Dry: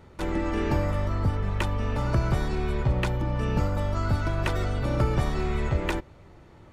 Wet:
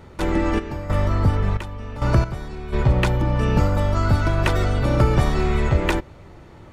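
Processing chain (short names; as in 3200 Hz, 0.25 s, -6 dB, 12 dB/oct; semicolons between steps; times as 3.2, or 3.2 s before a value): 0.58–2.72 step gate "x...xxx.." 67 bpm -12 dB; gain +7 dB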